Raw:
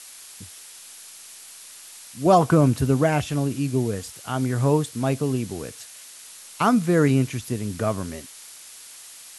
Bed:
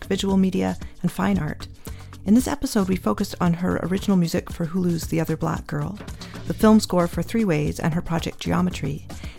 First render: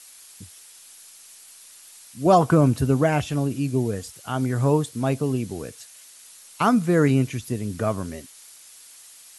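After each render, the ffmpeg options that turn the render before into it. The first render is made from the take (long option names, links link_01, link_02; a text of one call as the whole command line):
ffmpeg -i in.wav -af "afftdn=noise_reduction=6:noise_floor=-44" out.wav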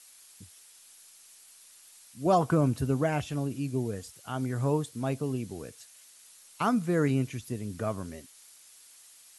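ffmpeg -i in.wav -af "volume=-7.5dB" out.wav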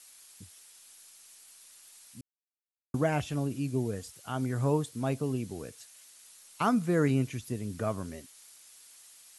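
ffmpeg -i in.wav -filter_complex "[0:a]asplit=3[link_01][link_02][link_03];[link_01]atrim=end=2.21,asetpts=PTS-STARTPTS,afade=type=out:start_time=2.206:duration=0.004:curve=hsin[link_04];[link_02]atrim=start=2.21:end=2.94,asetpts=PTS-STARTPTS,volume=0[link_05];[link_03]atrim=start=2.94,asetpts=PTS-STARTPTS,afade=type=in:duration=0.004:curve=hsin[link_06];[link_04][link_05][link_06]concat=n=3:v=0:a=1" out.wav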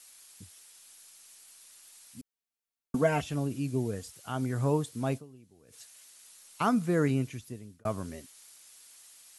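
ffmpeg -i in.wav -filter_complex "[0:a]asettb=1/sr,asplit=3[link_01][link_02][link_03];[link_01]atrim=end=2.184[link_04];[link_02]atrim=start=2.18:end=3.22,asetpts=PTS-STARTPTS,afade=type=in:duration=0.004:curve=qsin,afade=type=out:start_time=1.036:duration=0.004:curve=qsin,aecho=1:1:4.4:0.73,atrim=end_sample=45864[link_05];[link_03]atrim=start=3.216[link_06];[link_04][link_05]acrossfade=duration=0.004:curve1=hsin:curve2=qsin[link_07];[link_07][link_06]acrossfade=duration=0.004:curve1=qsin:curve2=hsin,asplit=4[link_08][link_09][link_10][link_11];[link_08]atrim=end=5.44,asetpts=PTS-STARTPTS,afade=type=out:start_time=5.17:duration=0.27:curve=exp:silence=0.0891251[link_12];[link_09]atrim=start=5.44:end=5.47,asetpts=PTS-STARTPTS,volume=-21dB[link_13];[link_10]atrim=start=5.47:end=7.85,asetpts=PTS-STARTPTS,afade=type=in:duration=0.27:curve=exp:silence=0.0891251,afade=type=out:start_time=1.31:duration=1.07:curve=qsin[link_14];[link_11]atrim=start=7.85,asetpts=PTS-STARTPTS,afade=type=in:duration=0.004:curve=hsin[link_15];[link_12][link_13][link_14][link_15]concat=n=4:v=0:a=1" out.wav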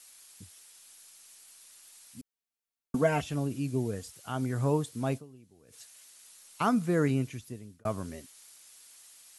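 ffmpeg -i in.wav -af anull out.wav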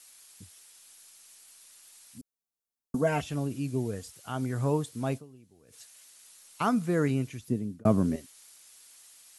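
ffmpeg -i in.wav -filter_complex "[0:a]asettb=1/sr,asplit=3[link_01][link_02][link_03];[link_01]atrim=end=2.184[link_04];[link_02]atrim=start=2.18:end=3.07,asetpts=PTS-STARTPTS,afade=type=in:duration=0.004:curve=qsin,afade=type=out:start_time=0.886:duration=0.004:curve=qsin,equalizer=frequency=2300:width=0.95:gain=-11[link_05];[link_03]atrim=start=3.066[link_06];[link_04][link_05]acrossfade=duration=0.004:curve1=hsin:curve2=qsin[link_07];[link_07][link_06]acrossfade=duration=0.004:curve1=qsin:curve2=hsin,asettb=1/sr,asplit=3[link_08][link_09][link_10];[link_08]atrim=end=7.484[link_11];[link_09]atrim=start=7.48:end=8.16,asetpts=PTS-STARTPTS,afade=type=in:duration=0.004:curve=qsin,afade=type=out:start_time=0.676:duration=0.004:curve=qsin,equalizer=frequency=220:width_type=o:width=2.6:gain=15[link_12];[link_10]atrim=start=8.156[link_13];[link_11][link_12]acrossfade=duration=0.004:curve1=hsin:curve2=qsin[link_14];[link_14][link_13]acrossfade=duration=0.004:curve1=qsin:curve2=hsin" out.wav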